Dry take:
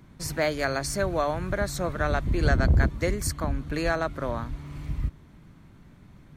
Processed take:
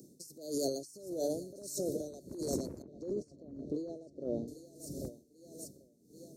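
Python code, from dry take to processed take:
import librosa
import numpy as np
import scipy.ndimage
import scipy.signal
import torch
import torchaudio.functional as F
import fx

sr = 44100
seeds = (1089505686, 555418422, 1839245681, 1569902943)

p1 = scipy.signal.sosfilt(scipy.signal.cheby2(4, 60, [1000.0, 2500.0], 'bandstop', fs=sr, output='sos'), x)
p2 = fx.echo_feedback(p1, sr, ms=790, feedback_pct=45, wet_db=-14.5)
p3 = np.clip(10.0 ** (19.0 / 20.0) * p2, -1.0, 1.0) / 10.0 ** (19.0 / 20.0)
p4 = p2 + (p3 * 10.0 ** (-7.5 / 20.0))
p5 = scipy.signal.sosfilt(scipy.signal.butter(2, 480.0, 'highpass', fs=sr, output='sos'), p4)
p6 = fx.peak_eq(p5, sr, hz=3100.0, db=-13.5, octaves=0.24)
p7 = p6 + 10.0 ** (-24.0 / 20.0) * np.pad(p6, (int(713 * sr / 1000.0), 0))[:len(p6)]
p8 = fx.over_compress(p7, sr, threshold_db=-39.0, ratio=-1.0)
p9 = fx.spacing_loss(p8, sr, db_at_10k=30, at=(2.82, 4.48))
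p10 = p9 * 10.0 ** (-18 * (0.5 - 0.5 * np.cos(2.0 * np.pi * 1.6 * np.arange(len(p9)) / sr)) / 20.0)
y = p10 * 10.0 ** (6.5 / 20.0)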